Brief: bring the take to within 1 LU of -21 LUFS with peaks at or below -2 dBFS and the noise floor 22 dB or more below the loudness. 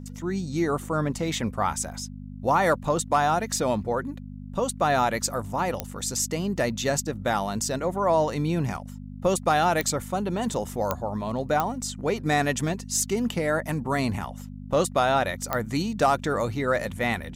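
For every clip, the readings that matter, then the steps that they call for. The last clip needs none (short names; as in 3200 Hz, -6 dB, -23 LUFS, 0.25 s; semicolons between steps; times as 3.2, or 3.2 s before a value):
clicks 5; hum 50 Hz; harmonics up to 250 Hz; hum level -36 dBFS; loudness -26.0 LUFS; peak -9.0 dBFS; loudness target -21.0 LUFS
-> de-click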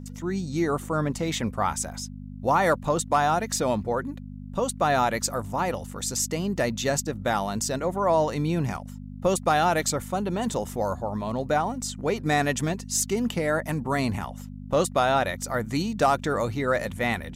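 clicks 0; hum 50 Hz; harmonics up to 250 Hz; hum level -36 dBFS
-> de-hum 50 Hz, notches 5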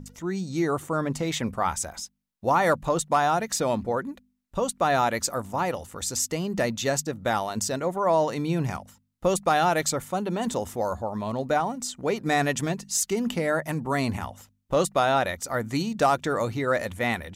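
hum none; loudness -26.0 LUFS; peak -11.0 dBFS; loudness target -21.0 LUFS
-> gain +5 dB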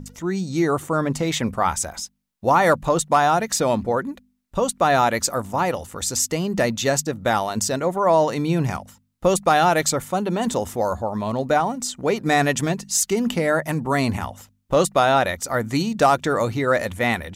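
loudness -21.0 LUFS; peak -6.0 dBFS; noise floor -65 dBFS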